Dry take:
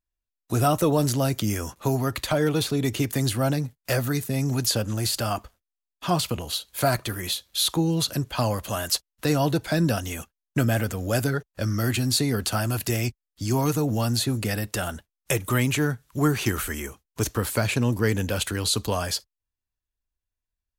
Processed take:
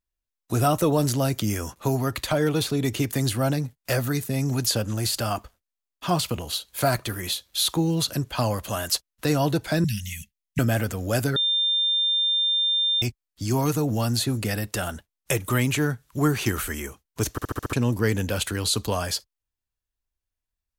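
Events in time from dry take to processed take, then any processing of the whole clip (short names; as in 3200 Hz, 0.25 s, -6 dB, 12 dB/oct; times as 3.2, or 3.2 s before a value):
5.26–8.08 block floating point 7-bit
9.84–10.59 Chebyshev band-stop 210–1900 Hz, order 5
11.36–13.02 bleep 3600 Hz -19.5 dBFS
17.31 stutter in place 0.07 s, 6 plays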